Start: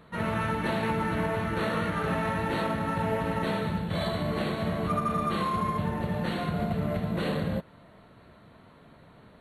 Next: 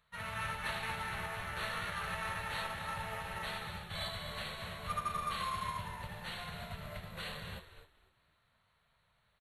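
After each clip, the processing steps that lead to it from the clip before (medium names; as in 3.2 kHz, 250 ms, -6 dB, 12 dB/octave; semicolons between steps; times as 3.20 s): amplifier tone stack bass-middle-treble 10-0-10; frequency-shifting echo 249 ms, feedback 33%, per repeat -75 Hz, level -7.5 dB; upward expansion 1.5:1, over -58 dBFS; trim +1.5 dB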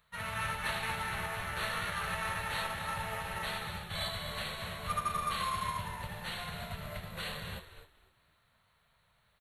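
treble shelf 9.5 kHz +5.5 dB; trim +3 dB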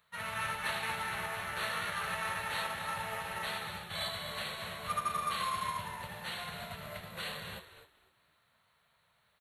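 high-pass 190 Hz 6 dB/octave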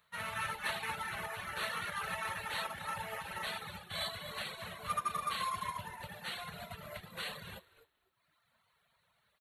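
reverb removal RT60 1.2 s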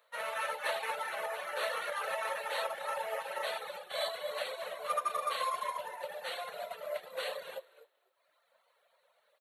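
resonant high-pass 540 Hz, resonance Q 5.7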